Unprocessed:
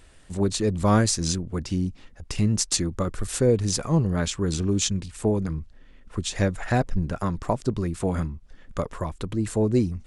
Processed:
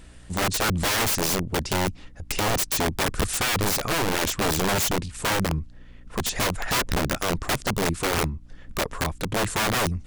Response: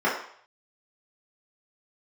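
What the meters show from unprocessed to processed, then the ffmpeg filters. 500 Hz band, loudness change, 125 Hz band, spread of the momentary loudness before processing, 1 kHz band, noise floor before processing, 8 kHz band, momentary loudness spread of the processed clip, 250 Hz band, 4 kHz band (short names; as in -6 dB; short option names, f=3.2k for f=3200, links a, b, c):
-1.5 dB, +1.0 dB, -4.5 dB, 11 LU, +5.5 dB, -51 dBFS, +2.0 dB, 8 LU, -4.5 dB, +5.5 dB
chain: -af "aeval=exprs='(mod(11.9*val(0)+1,2)-1)/11.9':c=same,aeval=exprs='val(0)+0.00224*(sin(2*PI*60*n/s)+sin(2*PI*2*60*n/s)/2+sin(2*PI*3*60*n/s)/3+sin(2*PI*4*60*n/s)/4+sin(2*PI*5*60*n/s)/5)':c=same,volume=3.5dB"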